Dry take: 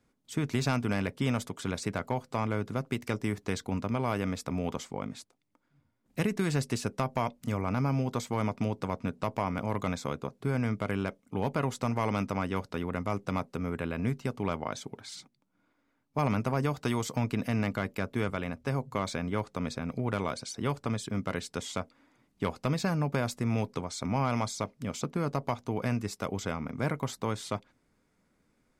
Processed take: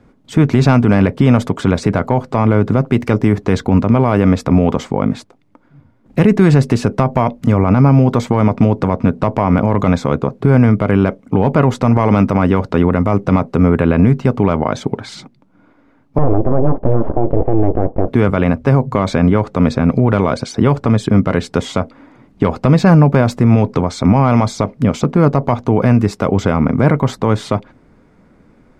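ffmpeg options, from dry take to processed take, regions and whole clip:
-filter_complex "[0:a]asettb=1/sr,asplit=3[s0][s1][s2];[s0]atrim=end=16.184[s3];[s1]atrim=start=16.18:end=18.08,asetpts=PTS-STARTPTS,afade=t=in:d=0.004:c=qsin,afade=t=out:st=1.896:d=0.004:c=qsin,aeval=exprs='abs(val(0))':c=same,lowpass=f=640:t=q:w=1.6[s4];[s2]atrim=start=18.076[s5];[s3][s4]acrossfade=d=0.004:c1=hsin:c2=qsin[s6];[s6][s5]acrossfade=d=0.004:c1=qsin:c2=hsin,lowpass=f=1000:p=1,acontrast=90,alimiter=level_in=7.5:limit=0.891:release=50:level=0:latency=1,volume=0.891"

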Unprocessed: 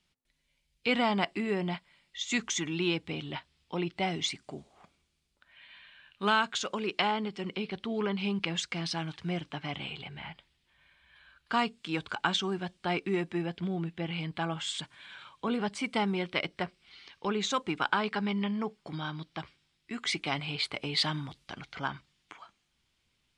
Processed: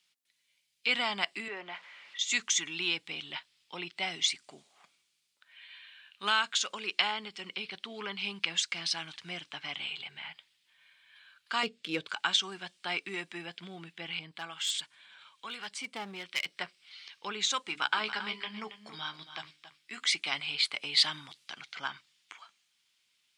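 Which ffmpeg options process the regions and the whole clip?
-filter_complex "[0:a]asettb=1/sr,asplit=3[s0][s1][s2];[s0]atrim=end=1.484[s3];[s1]atrim=start=1.48:end=2.19,asetpts=PTS-STARTPTS,afade=t=in:d=0.004:c=qsin,afade=t=out:st=0.706:d=0.004:c=qsin,aeval=exprs='val(0)+0.5*0.00668*sgn(val(0))':c=same,highpass=370,lowpass=2100[s4];[s2]atrim=start=2.186[s5];[s3][s4]acrossfade=d=0.004:c1=hsin:c2=qsin[s6];[s6][s5]acrossfade=d=0.004:c1=qsin:c2=hsin,asettb=1/sr,asplit=3[s7][s8][s9];[s7]atrim=end=11.634[s10];[s8]atrim=start=11.63:end=12.07,asetpts=PTS-STARTPTS,afade=t=in:d=0.004:c=qsin,afade=t=out:st=0.436:d=0.004:c=qsin,lowshelf=f=670:t=q:w=3:g=7.5,adynamicsmooth=sensitivity=4.5:basefreq=5300[s11];[s9]atrim=start=12.066[s12];[s10][s11]acrossfade=d=0.004:c1=hsin:c2=qsin[s13];[s13][s12]acrossfade=d=0.004:c1=qsin:c2=hsin,asettb=1/sr,asplit=3[s14][s15][s16];[s14]atrim=end=14.194[s17];[s15]atrim=start=14.19:end=16.46,asetpts=PTS-STARTPTS,afade=t=in:d=0.004:c=qsin,afade=t=out:st=2.266:d=0.004:c=qsin,acrossover=split=1000[s18][s19];[s18]aeval=exprs='val(0)*(1-0.7/2+0.7/2*cos(2*PI*1.1*n/s))':c=same[s20];[s19]aeval=exprs='val(0)*(1-0.7/2-0.7/2*cos(2*PI*1.1*n/s))':c=same[s21];[s20][s21]amix=inputs=2:normalize=0,aeval=exprs='clip(val(0),-1,0.0335)':c=same[s22];[s16]atrim=start=16.456[s23];[s17][s22]acrossfade=d=0.004:c1=hsin:c2=qsin[s24];[s24][s23]acrossfade=d=0.004:c1=qsin:c2=hsin,asettb=1/sr,asplit=3[s25][s26][s27];[s25]atrim=end=17.674[s28];[s26]atrim=start=17.67:end=20.04,asetpts=PTS-STARTPTS,afade=t=in:d=0.004:c=qsin,afade=t=out:st=2.366:d=0.004:c=qsin,bandreject=f=50:t=h:w=6,bandreject=f=100:t=h:w=6,bandreject=f=150:t=h:w=6,bandreject=f=200:t=h:w=6,bandreject=f=250:t=h:w=6,bandreject=f=300:t=h:w=6,asplit=2[s29][s30];[s30]adelay=14,volume=0.355[s31];[s29][s31]amix=inputs=2:normalize=0,atrim=end_sample=104517,aecho=1:1:276:0.251,atrim=end_sample=104517[s32];[s27]atrim=start=20.036[s33];[s28][s32]acrossfade=d=0.004:c1=hsin:c2=qsin[s34];[s34][s33]acrossfade=d=0.004:c1=qsin:c2=hsin,highpass=140,tiltshelf=f=970:g=-10,volume=0.596"

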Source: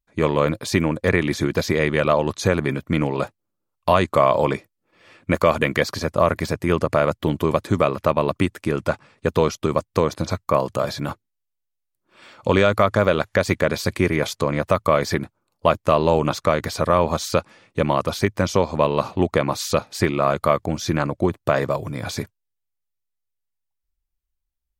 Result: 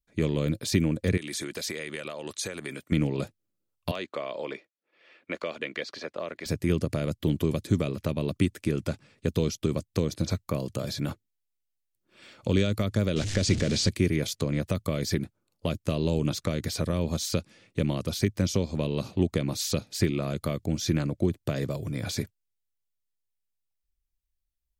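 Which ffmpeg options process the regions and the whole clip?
-filter_complex "[0:a]asettb=1/sr,asplit=3[s0][s1][s2];[s0]atrim=end=1.174[s3];[s1]atrim=start=1.17:end=2.92,asetpts=PTS-STARTPTS,afade=t=in:d=0.004:c=qsin,afade=t=out:st=1.746:d=0.004:c=qsin,highpass=f=820:p=1,equalizer=f=8600:t=o:w=0.34:g=10,acompressor=threshold=0.0562:ratio=3:attack=3.2:release=140:knee=1:detection=peak[s4];[s2]atrim=start=2.916[s5];[s3][s4]acrossfade=d=0.004:c1=hsin:c2=qsin[s6];[s6][s5]acrossfade=d=0.004:c1=qsin:c2=hsin,asettb=1/sr,asplit=3[s7][s8][s9];[s7]atrim=end=3.914[s10];[s8]atrim=start=3.91:end=6.46,asetpts=PTS-STARTPTS,afade=t=in:d=0.004:c=qsin,afade=t=out:st=2.546:d=0.004:c=qsin,highpass=520,lowpass=3300,asoftclip=type=hard:threshold=0.562[s11];[s9]atrim=start=6.456[s12];[s10][s11]acrossfade=d=0.004:c1=hsin:c2=qsin[s13];[s13][s12]acrossfade=d=0.004:c1=qsin:c2=hsin,asettb=1/sr,asplit=3[s14][s15][s16];[s14]atrim=end=13.164[s17];[s15]atrim=start=13.16:end=13.89,asetpts=PTS-STARTPTS,afade=t=in:d=0.004:c=qsin,afade=t=out:st=0.726:d=0.004:c=qsin,aeval=exprs='val(0)+0.5*0.0891*sgn(val(0))':c=same,lowpass=f=7500:w=0.5412,lowpass=f=7500:w=1.3066[s18];[s16]atrim=start=13.886[s19];[s17][s18]acrossfade=d=0.004:c1=hsin:c2=qsin[s20];[s20][s19]acrossfade=d=0.004:c1=qsin:c2=hsin,equalizer=f=1000:w=1.1:g=-10.5,acrossover=split=370|3000[s21][s22][s23];[s22]acompressor=threshold=0.0224:ratio=6[s24];[s21][s24][s23]amix=inputs=3:normalize=0,volume=0.794"

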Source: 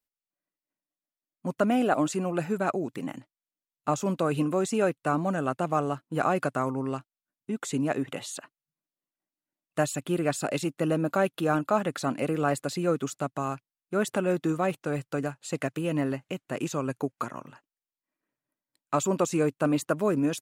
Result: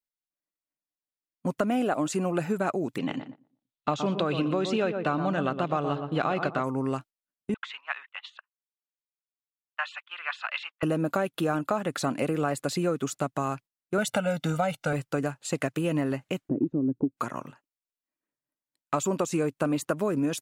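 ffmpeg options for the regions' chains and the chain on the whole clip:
-filter_complex "[0:a]asettb=1/sr,asplit=3[s0][s1][s2];[s0]atrim=end=2.984[s3];[s1]atrim=start=2.98:end=6.64,asetpts=PTS-STARTPTS,afade=t=in:d=0.004:c=qsin,afade=t=out:st=3.656:d=0.004:c=qsin,lowpass=f=3700:t=q:w=3.1,asplit=2[s4][s5];[s5]adelay=119,lowpass=f=1300:p=1,volume=0.398,asplit=2[s6][s7];[s7]adelay=119,lowpass=f=1300:p=1,volume=0.34,asplit=2[s8][s9];[s9]adelay=119,lowpass=f=1300:p=1,volume=0.34,asplit=2[s10][s11];[s11]adelay=119,lowpass=f=1300:p=1,volume=0.34[s12];[s4][s6][s8][s10][s12]amix=inputs=5:normalize=0,atrim=end_sample=161406[s13];[s2]atrim=start=6.636[s14];[s3][s13]acrossfade=d=0.004:c1=hsin:c2=qsin[s15];[s15][s14]acrossfade=d=0.004:c1=qsin:c2=hsin,asettb=1/sr,asplit=3[s16][s17][s18];[s16]atrim=end=7.544[s19];[s17]atrim=start=7.54:end=10.83,asetpts=PTS-STARTPTS,afade=t=in:d=0.004:c=qsin,afade=t=out:st=3.286:d=0.004:c=qsin,aemphasis=mode=production:type=bsi,agate=range=0.0447:threshold=0.0126:ratio=16:release=100:detection=peak,asuperpass=centerf=1800:order=8:qfactor=0.74[s20];[s18]atrim=start=10.826[s21];[s19][s20]acrossfade=d=0.004:c1=hsin:c2=qsin[s22];[s22][s21]acrossfade=d=0.004:c1=qsin:c2=hsin,asettb=1/sr,asplit=3[s23][s24][s25];[s23]atrim=end=13.984[s26];[s24]atrim=start=13.98:end=14.93,asetpts=PTS-STARTPTS,afade=t=in:d=0.004:c=qsin,afade=t=out:st=0.946:d=0.004:c=qsin,equalizer=f=3800:t=o:w=1.3:g=5,aecho=1:1:1.4:0.9,atrim=end_sample=41895[s27];[s25]atrim=start=14.926[s28];[s26][s27]acrossfade=d=0.004:c1=hsin:c2=qsin[s29];[s29][s28]acrossfade=d=0.004:c1=qsin:c2=hsin,asettb=1/sr,asplit=3[s30][s31][s32];[s30]atrim=end=16.494[s33];[s31]atrim=start=16.49:end=17.17,asetpts=PTS-STARTPTS,afade=t=in:d=0.004:c=qsin,afade=t=out:st=0.676:d=0.004:c=qsin,acompressor=mode=upward:threshold=0.0282:ratio=2.5:attack=3.2:release=140:knee=2.83:detection=peak,lowpass=f=300:t=q:w=3.5[s34];[s32]atrim=start=17.166[s35];[s33][s34]acrossfade=d=0.004:c1=hsin:c2=qsin[s36];[s36][s35]acrossfade=d=0.004:c1=qsin:c2=hsin,agate=range=0.282:threshold=0.00501:ratio=16:detection=peak,acompressor=threshold=0.0447:ratio=6,volume=1.58"

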